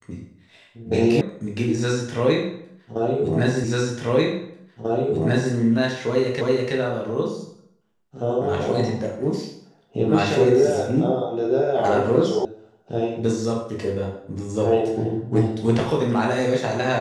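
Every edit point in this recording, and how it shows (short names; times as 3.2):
1.21 sound cut off
3.64 repeat of the last 1.89 s
6.41 repeat of the last 0.33 s
12.45 sound cut off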